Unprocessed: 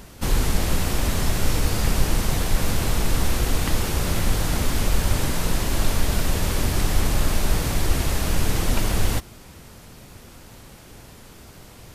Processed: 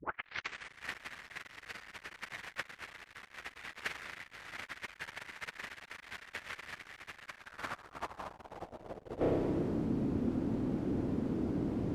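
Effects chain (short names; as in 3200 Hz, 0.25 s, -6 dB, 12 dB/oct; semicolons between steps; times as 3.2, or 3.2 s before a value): tape start at the beginning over 0.91 s; spring tank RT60 1.7 s, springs 31 ms, chirp 35 ms, DRR 12 dB; soft clip -21 dBFS, distortion -9 dB; low shelf 170 Hz +5 dB; negative-ratio compressor -29 dBFS, ratio -0.5; band-pass sweep 1900 Hz -> 280 Hz, 7.25–9.9; gain +7 dB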